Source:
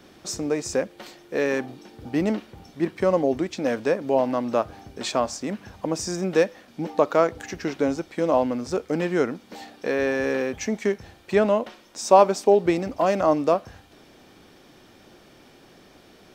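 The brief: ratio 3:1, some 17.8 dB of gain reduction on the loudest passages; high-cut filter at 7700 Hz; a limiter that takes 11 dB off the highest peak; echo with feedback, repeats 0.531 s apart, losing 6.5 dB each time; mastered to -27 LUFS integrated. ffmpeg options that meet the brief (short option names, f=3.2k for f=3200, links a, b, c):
-af "lowpass=7.7k,acompressor=threshold=-34dB:ratio=3,alimiter=level_in=3.5dB:limit=-24dB:level=0:latency=1,volume=-3.5dB,aecho=1:1:531|1062|1593|2124|2655|3186:0.473|0.222|0.105|0.0491|0.0231|0.0109,volume=11dB"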